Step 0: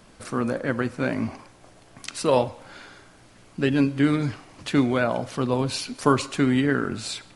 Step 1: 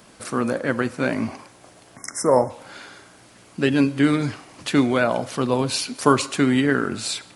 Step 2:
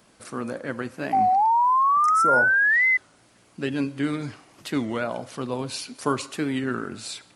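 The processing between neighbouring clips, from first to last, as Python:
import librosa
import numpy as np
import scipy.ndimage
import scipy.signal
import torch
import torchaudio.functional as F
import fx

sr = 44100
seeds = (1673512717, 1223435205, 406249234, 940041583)

y1 = fx.spec_erase(x, sr, start_s=1.97, length_s=0.53, low_hz=2200.0, high_hz=5100.0)
y1 = fx.highpass(y1, sr, hz=150.0, slope=6)
y1 = fx.high_shelf(y1, sr, hz=8300.0, db=6.5)
y1 = y1 * librosa.db_to_amplitude(3.5)
y2 = fx.spec_paint(y1, sr, seeds[0], shape='rise', start_s=1.14, length_s=1.85, low_hz=750.0, high_hz=2000.0, level_db=-11.0)
y2 = fx.record_warp(y2, sr, rpm=33.33, depth_cents=160.0)
y2 = y2 * librosa.db_to_amplitude(-8.0)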